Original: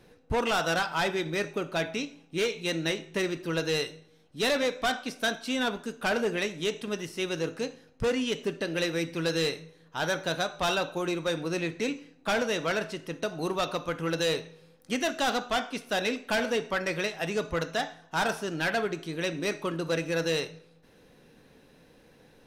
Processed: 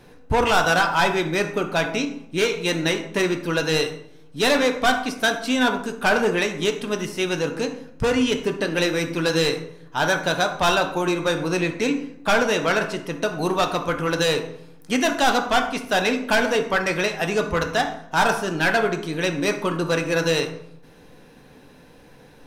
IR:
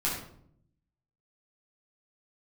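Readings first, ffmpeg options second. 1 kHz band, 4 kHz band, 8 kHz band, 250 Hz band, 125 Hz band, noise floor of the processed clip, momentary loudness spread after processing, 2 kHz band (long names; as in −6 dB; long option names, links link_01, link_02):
+10.0 dB, +6.5 dB, +7.5 dB, +8.0 dB, +7.5 dB, −48 dBFS, 7 LU, +8.5 dB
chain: -filter_complex "[0:a]asplit=2[link_01][link_02];[link_02]equalizer=frequency=160:width_type=o:width=0.67:gain=-6,equalizer=frequency=1000:width_type=o:width=0.67:gain=7,equalizer=frequency=4000:width_type=o:width=0.67:gain=-9[link_03];[1:a]atrim=start_sample=2205[link_04];[link_03][link_04]afir=irnorm=-1:irlink=0,volume=-13dB[link_05];[link_01][link_05]amix=inputs=2:normalize=0,volume=6dB"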